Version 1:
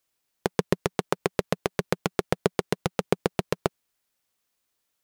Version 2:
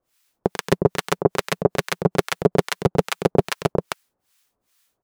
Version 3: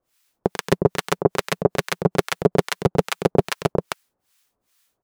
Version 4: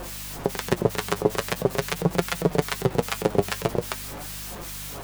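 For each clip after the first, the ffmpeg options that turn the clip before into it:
-filter_complex "[0:a]aecho=1:1:93.29|259.5:0.251|0.562,acrossover=split=1000[a][b];[a]aeval=exprs='val(0)*(1-1/2+1/2*cos(2*PI*2.4*n/s))':c=same[c];[b]aeval=exprs='val(0)*(1-1/2-1/2*cos(2*PI*2.4*n/s))':c=same[d];[c][d]amix=inputs=2:normalize=0,alimiter=level_in=13dB:limit=-1dB:release=50:level=0:latency=1,volume=-1dB"
-af anull
-af "aeval=exprs='val(0)+0.5*0.0473*sgn(val(0))':c=same,aeval=exprs='val(0)+0.0178*(sin(2*PI*50*n/s)+sin(2*PI*2*50*n/s)/2+sin(2*PI*3*50*n/s)/3+sin(2*PI*4*50*n/s)/4+sin(2*PI*5*50*n/s)/5)':c=same,flanger=delay=5.5:depth=4.4:regen=50:speed=0.44:shape=triangular"

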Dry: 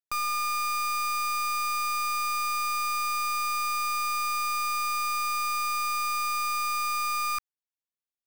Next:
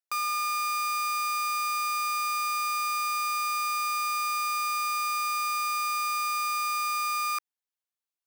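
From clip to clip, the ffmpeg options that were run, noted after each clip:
-af "highpass=480"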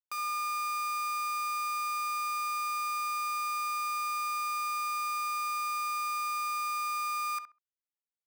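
-filter_complex "[0:a]anlmdn=0.1,asplit=2[a][b];[b]adelay=66,lowpass=f=1.4k:p=1,volume=-6dB,asplit=2[c][d];[d]adelay=66,lowpass=f=1.4k:p=1,volume=0.24,asplit=2[e][f];[f]adelay=66,lowpass=f=1.4k:p=1,volume=0.24[g];[a][c][e][g]amix=inputs=4:normalize=0,volume=-6.5dB"

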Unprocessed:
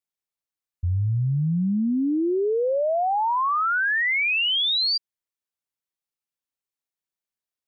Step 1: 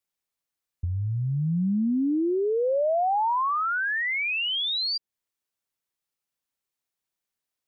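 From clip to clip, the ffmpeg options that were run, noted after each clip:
-filter_complex "[0:a]acrossover=split=240|680[a][b][c];[a]acompressor=threshold=-33dB:ratio=4[d];[b]acompressor=threshold=-34dB:ratio=4[e];[c]acompressor=threshold=-32dB:ratio=4[f];[d][e][f]amix=inputs=3:normalize=0,volume=4dB"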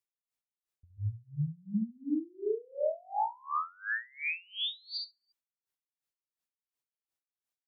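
-af "aecho=1:1:69|138|207|276|345:0.531|0.239|0.108|0.0484|0.0218,aeval=exprs='val(0)*pow(10,-31*(0.5-0.5*cos(2*PI*2.8*n/s))/20)':c=same,volume=-5dB"

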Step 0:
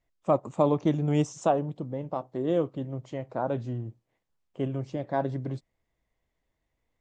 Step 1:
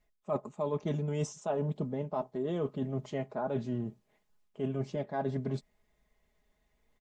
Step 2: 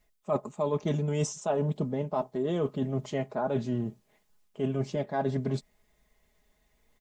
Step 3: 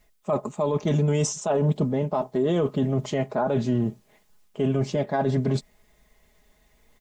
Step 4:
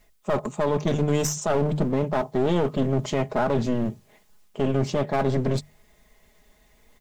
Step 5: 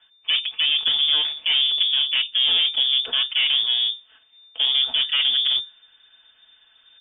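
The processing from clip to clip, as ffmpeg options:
-af "aecho=1:1:4.8:0.71,areverse,acompressor=threshold=-33dB:ratio=10,areverse,volume=3.5dB"
-af "highshelf=f=4.2k:g=6,volume=4dB"
-af "alimiter=limit=-23dB:level=0:latency=1:release=15,volume=8dB"
-af "bandreject=f=50:t=h:w=6,bandreject=f=100:t=h:w=6,bandreject=f=150:t=h:w=6,aeval=exprs='clip(val(0),-1,0.0335)':c=same,volume=3dB"
-af "lowpass=f=3.1k:t=q:w=0.5098,lowpass=f=3.1k:t=q:w=0.6013,lowpass=f=3.1k:t=q:w=0.9,lowpass=f=3.1k:t=q:w=2.563,afreqshift=-3600,volume=2.5dB"

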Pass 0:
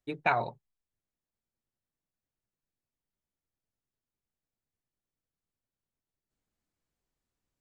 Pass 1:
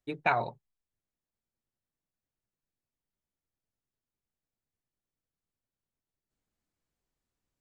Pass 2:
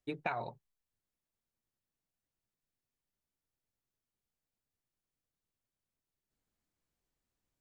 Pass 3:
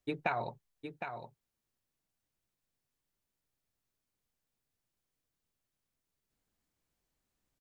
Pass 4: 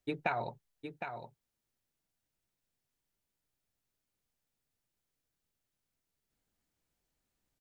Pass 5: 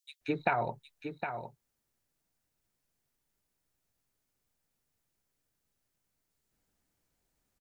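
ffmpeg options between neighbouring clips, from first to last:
-af anull
-af "acompressor=threshold=-32dB:ratio=6,volume=-1dB"
-af "aecho=1:1:761:0.398,volume=3dB"
-af "bandreject=f=1.1k:w=16"
-filter_complex "[0:a]acrossover=split=3300[a][b];[a]adelay=210[c];[c][b]amix=inputs=2:normalize=0,volume=4.5dB"

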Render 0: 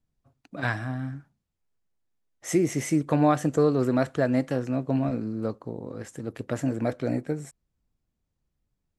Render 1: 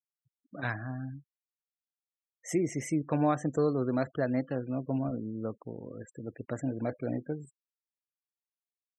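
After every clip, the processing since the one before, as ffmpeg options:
-af "afftfilt=real='re*gte(hypot(re,im),0.0141)':imag='im*gte(hypot(re,im),0.0141)':win_size=1024:overlap=0.75,volume=-6dB"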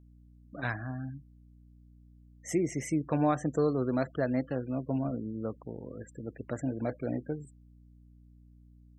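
-af "aeval=exprs='val(0)+0.00178*(sin(2*PI*60*n/s)+sin(2*PI*2*60*n/s)/2+sin(2*PI*3*60*n/s)/3+sin(2*PI*4*60*n/s)/4+sin(2*PI*5*60*n/s)/5)':c=same"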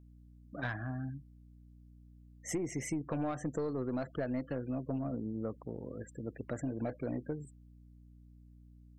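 -af "aeval=exprs='(tanh(10*val(0)+0.25)-tanh(0.25))/10':c=same,acompressor=threshold=-32dB:ratio=6"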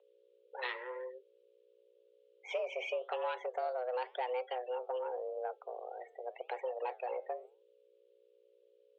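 -af "flanger=delay=4.1:depth=7.8:regen=-84:speed=0.9:shape=sinusoidal,aexciter=amount=5.5:drive=6.2:freq=2.4k,highpass=f=190:t=q:w=0.5412,highpass=f=190:t=q:w=1.307,lowpass=f=3.1k:t=q:w=0.5176,lowpass=f=3.1k:t=q:w=0.7071,lowpass=f=3.1k:t=q:w=1.932,afreqshift=250,volume=4dB"

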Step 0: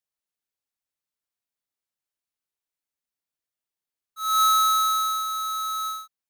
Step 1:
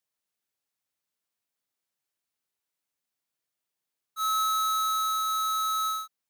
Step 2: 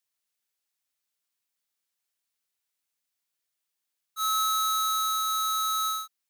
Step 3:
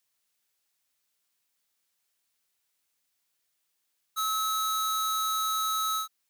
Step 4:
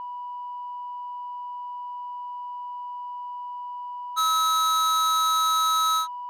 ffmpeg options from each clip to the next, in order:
-af "highpass=84,acompressor=threshold=-31dB:ratio=6,volume=3.5dB"
-af "tiltshelf=f=1.2k:g=-4.5,volume=-1dB"
-af "alimiter=level_in=3.5dB:limit=-24dB:level=0:latency=1:release=223,volume=-3.5dB,volume=6dB"
-af "aeval=exprs='val(0)+0.0126*sin(2*PI*980*n/s)':c=same,adynamicsmooth=sensitivity=8:basefreq=2.5k,volume=6.5dB"

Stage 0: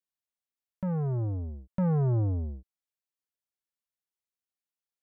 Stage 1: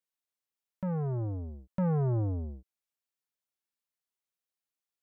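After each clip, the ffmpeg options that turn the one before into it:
-af "lowshelf=f=160:g=-5"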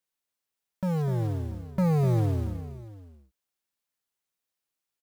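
-af "acrusher=bits=6:mode=log:mix=0:aa=0.000001,aecho=1:1:250|685:0.335|0.106,volume=4.5dB"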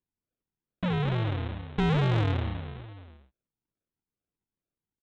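-af "aresample=8000,acrusher=samples=11:mix=1:aa=0.000001:lfo=1:lforange=6.6:lforate=2.3,aresample=44100,asoftclip=type=tanh:threshold=-18.5dB"

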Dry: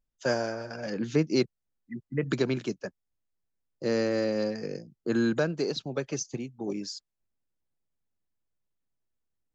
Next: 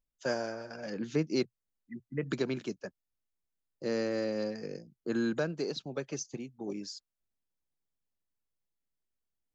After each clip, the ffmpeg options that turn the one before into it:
-af "equalizer=f=120:w=6.3:g=-5.5,volume=-5dB"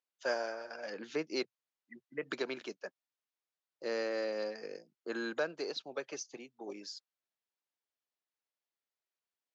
-af "highpass=510,lowpass=5.2k,volume=1dB"

